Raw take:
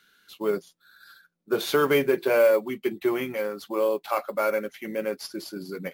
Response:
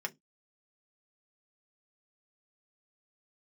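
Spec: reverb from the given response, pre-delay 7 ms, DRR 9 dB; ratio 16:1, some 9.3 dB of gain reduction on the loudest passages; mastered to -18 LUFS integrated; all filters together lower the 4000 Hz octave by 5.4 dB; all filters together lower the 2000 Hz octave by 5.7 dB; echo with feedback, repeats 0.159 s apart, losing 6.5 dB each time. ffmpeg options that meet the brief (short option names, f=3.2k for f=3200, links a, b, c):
-filter_complex "[0:a]equalizer=f=2k:t=o:g=-7,equalizer=f=4k:t=o:g=-4.5,acompressor=threshold=-25dB:ratio=16,aecho=1:1:159|318|477|636|795|954:0.473|0.222|0.105|0.0491|0.0231|0.0109,asplit=2[a][b];[1:a]atrim=start_sample=2205,adelay=7[c];[b][c]afir=irnorm=-1:irlink=0,volume=-11.5dB[d];[a][d]amix=inputs=2:normalize=0,volume=13dB"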